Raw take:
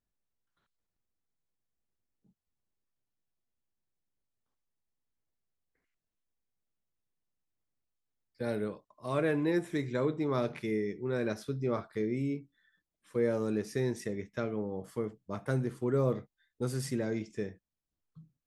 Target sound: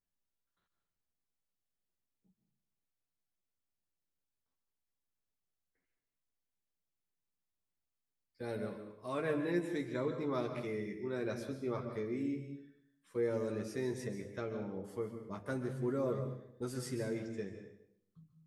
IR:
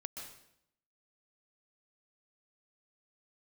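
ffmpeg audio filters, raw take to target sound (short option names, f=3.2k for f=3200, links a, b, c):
-filter_complex "[0:a]bandreject=f=50:t=h:w=6,bandreject=f=100:t=h:w=6,bandreject=f=150:t=h:w=6,asplit=2[a][b];[1:a]atrim=start_sample=2205,adelay=11[c];[b][c]afir=irnorm=-1:irlink=0,volume=0dB[d];[a][d]amix=inputs=2:normalize=0,volume=-6.5dB"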